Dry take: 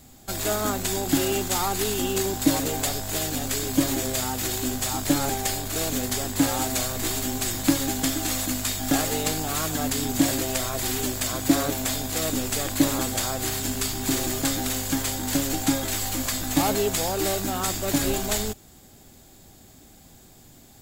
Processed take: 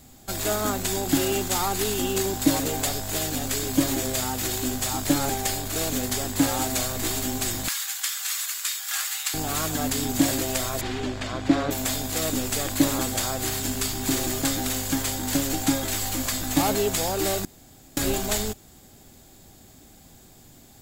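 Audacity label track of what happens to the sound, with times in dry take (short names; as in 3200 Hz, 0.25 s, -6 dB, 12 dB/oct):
7.680000	9.340000	inverse Chebyshev high-pass stop band from 460 Hz, stop band 50 dB
10.810000	11.710000	LPF 3300 Hz
17.450000	17.970000	room tone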